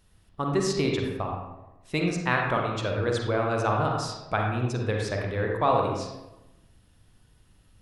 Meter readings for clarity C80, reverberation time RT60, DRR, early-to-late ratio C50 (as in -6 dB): 4.5 dB, 1.0 s, 0.0 dB, 1.5 dB